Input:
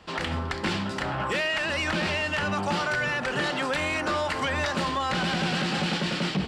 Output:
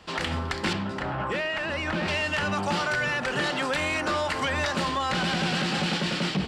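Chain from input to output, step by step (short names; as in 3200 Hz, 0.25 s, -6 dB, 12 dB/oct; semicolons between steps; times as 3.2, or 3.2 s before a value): high shelf 3300 Hz +4 dB, from 0.73 s -10.5 dB, from 2.08 s +2 dB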